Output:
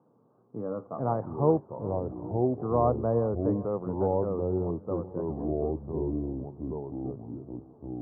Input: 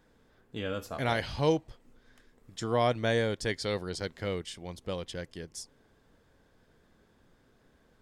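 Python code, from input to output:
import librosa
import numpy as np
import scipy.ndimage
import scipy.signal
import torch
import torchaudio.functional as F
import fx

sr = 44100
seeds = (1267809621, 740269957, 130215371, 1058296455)

p1 = scipy.signal.sosfilt(scipy.signal.cheby1(5, 1.0, [110.0, 1200.0], 'bandpass', fs=sr, output='sos'), x)
p2 = p1 + fx.echo_feedback(p1, sr, ms=389, feedback_pct=51, wet_db=-18.0, dry=0)
p3 = fx.echo_pitch(p2, sr, ms=562, semitones=-4, count=2, db_per_echo=-3.0)
y = p3 * librosa.db_to_amplitude(2.5)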